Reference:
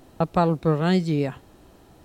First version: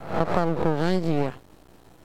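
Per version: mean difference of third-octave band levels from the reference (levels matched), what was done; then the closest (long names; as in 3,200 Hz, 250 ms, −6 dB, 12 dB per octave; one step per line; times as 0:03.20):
5.5 dB: peak hold with a rise ahead of every peak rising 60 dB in 0.60 s
dynamic equaliser 420 Hz, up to +7 dB, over −32 dBFS, Q 0.79
downward compressor 4 to 1, threshold −18 dBFS, peak gain reduction 8 dB
half-wave rectification
level +1 dB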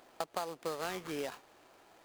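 11.0 dB: high-pass filter 590 Hz 12 dB per octave
downward compressor 10 to 1, threshold −30 dBFS, peak gain reduction 12.5 dB
bad sample-rate conversion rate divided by 8×, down none, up hold
short delay modulated by noise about 2,800 Hz, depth 0.031 ms
level −3 dB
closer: first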